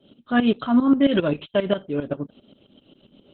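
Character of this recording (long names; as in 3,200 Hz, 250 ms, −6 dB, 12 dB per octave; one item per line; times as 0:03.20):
tremolo saw up 7.5 Hz, depth 80%
Opus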